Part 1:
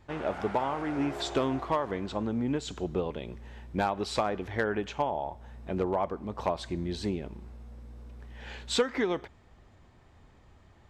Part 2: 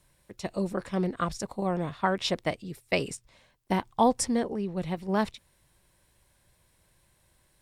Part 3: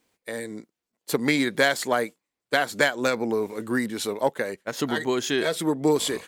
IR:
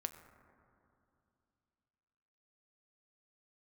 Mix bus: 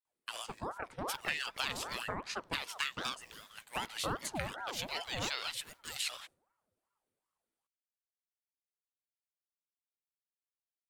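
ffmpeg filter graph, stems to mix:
-filter_complex "[1:a]adelay=50,volume=0.355,asplit=2[s0][s1];[s1]volume=0.224[s2];[2:a]acrusher=bits=9:mode=log:mix=0:aa=0.000001,highpass=f=2500:t=q:w=3,volume=0.75[s3];[s0][s3]amix=inputs=2:normalize=0,agate=range=0.0224:threshold=0.00562:ratio=3:detection=peak,acompressor=threshold=0.02:ratio=2.5,volume=1[s4];[3:a]atrim=start_sample=2205[s5];[s2][s5]afir=irnorm=-1:irlink=0[s6];[s4][s6]amix=inputs=2:normalize=0,aeval=exprs='val(0)*sin(2*PI*750*n/s+750*0.6/2.6*sin(2*PI*2.6*n/s))':c=same"

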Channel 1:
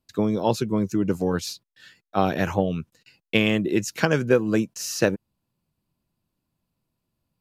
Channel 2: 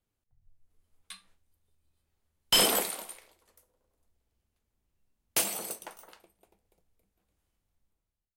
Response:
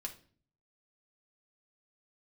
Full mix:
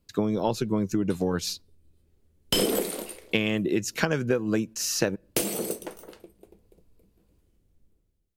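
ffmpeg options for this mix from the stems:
-filter_complex "[0:a]volume=1.26,asplit=3[s0][s1][s2];[s0]atrim=end=1.62,asetpts=PTS-STARTPTS,afade=t=out:st=1.616:d=0.004:c=hsin[s3];[s1]atrim=start=1.62:end=2.88,asetpts=PTS-STARTPTS,volume=0[s4];[s2]atrim=start=2.88,asetpts=PTS-STARTPTS,afade=t=in:d=0.004:c=hsin[s5];[s3][s4][s5]concat=n=3:v=0:a=1,asplit=2[s6][s7];[s7]volume=0.075[s8];[1:a]lowshelf=f=590:t=q:w=1.5:g=11,volume=1.41[s9];[2:a]atrim=start_sample=2205[s10];[s8][s10]afir=irnorm=-1:irlink=0[s11];[s6][s9][s11]amix=inputs=3:normalize=0,acompressor=threshold=0.0794:ratio=4"

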